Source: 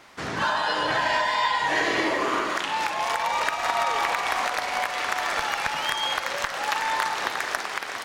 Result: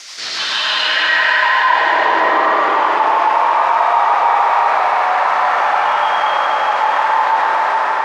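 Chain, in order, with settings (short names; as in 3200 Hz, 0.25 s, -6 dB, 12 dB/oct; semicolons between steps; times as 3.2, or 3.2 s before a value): ending faded out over 0.61 s; rotary speaker horn 6.7 Hz; hard clip -20.5 dBFS, distortion -17 dB; band-pass sweep 5900 Hz -> 940 Hz, 0.01–1.61; digital reverb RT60 4.7 s, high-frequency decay 0.95×, pre-delay 55 ms, DRR -10 dB; fast leveller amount 50%; gain +8.5 dB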